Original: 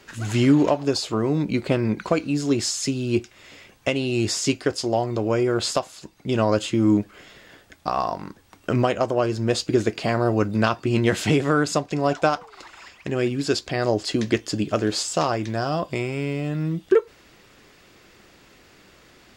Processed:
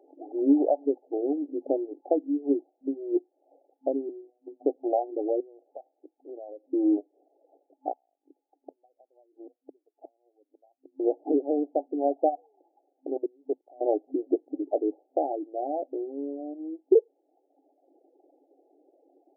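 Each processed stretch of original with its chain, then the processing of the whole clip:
0:04.09–0:04.65: phases set to zero 123 Hz + downward compressor 12 to 1, threshold −25 dBFS
0:05.40–0:06.72: band-pass filter 320–2,900 Hz + downward compressor 4 to 1, threshold −35 dBFS
0:07.92–0:11.00: transistor ladder low-pass 1,100 Hz, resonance 50% + gate with flip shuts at −25 dBFS, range −29 dB
0:13.17–0:13.81: high-pass filter 310 Hz 24 dB per octave + output level in coarse steps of 22 dB + one half of a high-frequency compander encoder only
whole clip: reverb reduction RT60 1.2 s; brick-wall band-pass 260–860 Hz; level −2 dB

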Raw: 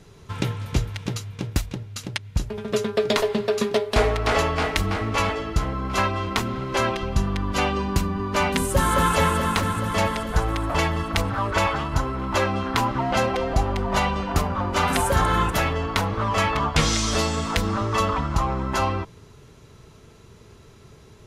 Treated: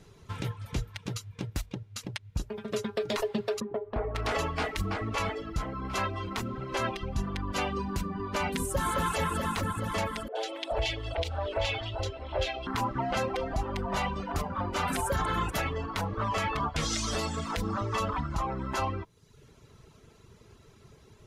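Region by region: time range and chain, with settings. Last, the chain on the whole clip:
0:03.60–0:04.15: low-pass filter 1,100 Hz + downward compressor 2 to 1, threshold −25 dBFS
0:10.28–0:12.67: drawn EQ curve 110 Hz 0 dB, 160 Hz −20 dB, 360 Hz 0 dB, 660 Hz +7 dB, 1,100 Hz −11 dB, 3,300 Hz +9 dB, 13,000 Hz −13 dB + three-band delay without the direct sound mids, highs, lows 70/430 ms, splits 290/1,600 Hz
whole clip: reverb reduction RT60 0.71 s; brickwall limiter −15 dBFS; level −5 dB

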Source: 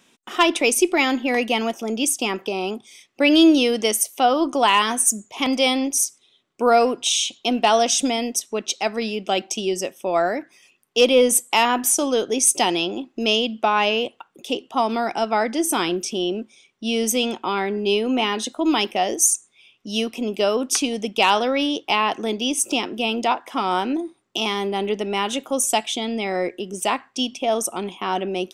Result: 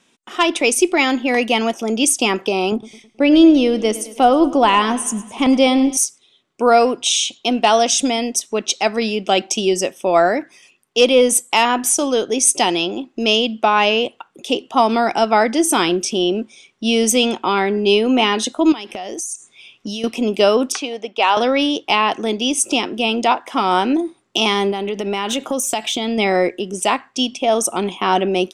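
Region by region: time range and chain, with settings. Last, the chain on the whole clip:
0:02.72–0:05.97: spectral tilt −2.5 dB per octave + repeating echo 106 ms, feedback 57%, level −17.5 dB
0:18.72–0:20.04: elliptic low-pass filter 12,000 Hz + downward compressor 20 to 1, threshold −31 dBFS
0:20.72–0:21.37: high-pass filter 500 Hz + head-to-tape spacing loss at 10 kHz 21 dB
0:24.71–0:26.18: bad sample-rate conversion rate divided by 2×, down filtered, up hold + downward compressor, threshold −26 dBFS
whole clip: low-pass filter 11,000 Hz 24 dB per octave; automatic gain control; level −1 dB

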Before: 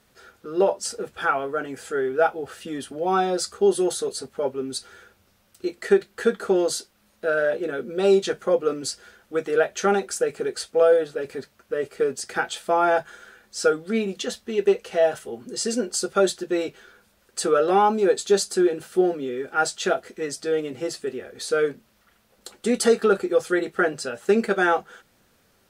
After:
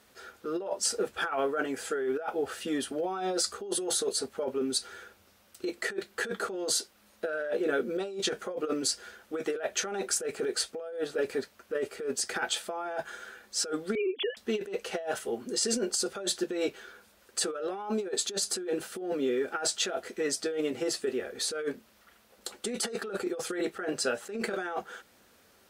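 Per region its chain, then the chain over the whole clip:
0:13.95–0:14.37: three sine waves on the formant tracks + high-pass filter 230 Hz 6 dB per octave
whole clip: high-pass filter 89 Hz 6 dB per octave; parametric band 140 Hz −8.5 dB 0.77 octaves; compressor whose output falls as the input rises −28 dBFS, ratio −1; level −3.5 dB

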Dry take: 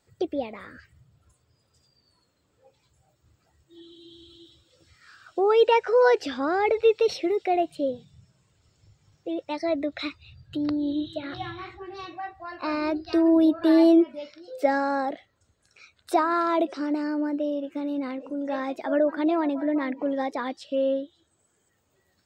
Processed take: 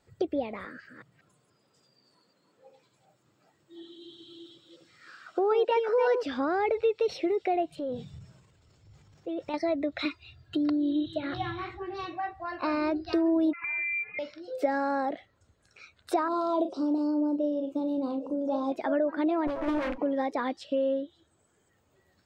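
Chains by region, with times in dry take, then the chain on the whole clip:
0:00.65–0:06.23: delay that plays each chunk backwards 187 ms, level −5.5 dB + high-pass filter 160 Hz 24 dB per octave
0:07.72–0:09.54: transient designer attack −5 dB, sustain +7 dB + downward compressor 5 to 1, threshold −32 dBFS
0:10.05–0:11.06: high-pass filter 230 Hz 6 dB per octave + comb filter 2.9 ms, depth 76%
0:13.53–0:14.19: downward compressor 10 to 1, threshold −29 dBFS + voice inversion scrambler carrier 2,700 Hz
0:16.28–0:18.72: Butterworth band-reject 1,900 Hz, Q 0.78 + double-tracking delay 37 ms −9 dB
0:19.47–0:19.98: lower of the sound and its delayed copy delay 9.2 ms + highs frequency-modulated by the lows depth 0.62 ms
whole clip: high-shelf EQ 3,900 Hz −7.5 dB; downward compressor 2.5 to 1, threshold −29 dBFS; level +2.5 dB

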